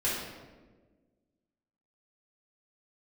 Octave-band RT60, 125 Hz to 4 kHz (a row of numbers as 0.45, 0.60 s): 1.7, 1.9, 1.6, 1.1, 1.0, 0.80 s